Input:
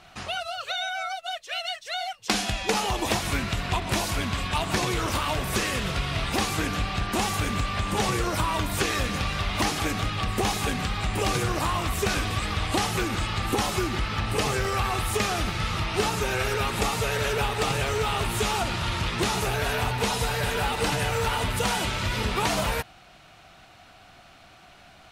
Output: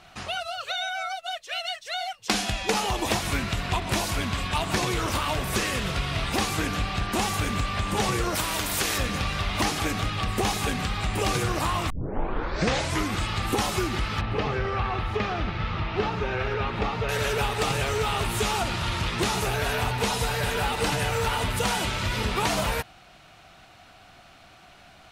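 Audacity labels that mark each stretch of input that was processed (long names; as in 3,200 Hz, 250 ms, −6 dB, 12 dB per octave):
8.350000	8.980000	every bin compressed towards the loudest bin 2 to 1
11.900000	11.900000	tape start 1.28 s
14.210000	17.090000	high-frequency loss of the air 280 metres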